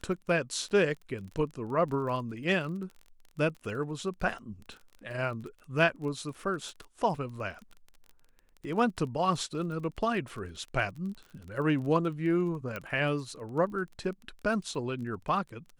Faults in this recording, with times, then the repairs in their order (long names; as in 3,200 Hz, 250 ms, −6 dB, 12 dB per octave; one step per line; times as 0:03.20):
surface crackle 27 per second −39 dBFS
0:12.76: click −22 dBFS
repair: click removal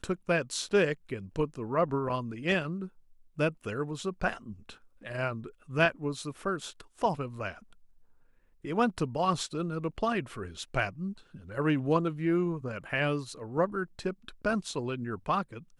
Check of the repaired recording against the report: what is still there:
0:12.76: click